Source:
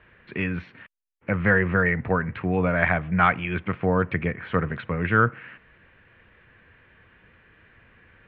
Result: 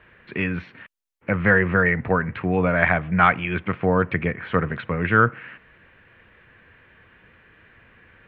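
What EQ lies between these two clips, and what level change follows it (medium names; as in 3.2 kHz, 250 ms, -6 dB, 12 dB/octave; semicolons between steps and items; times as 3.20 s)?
bass shelf 130 Hz -3.5 dB; +3.0 dB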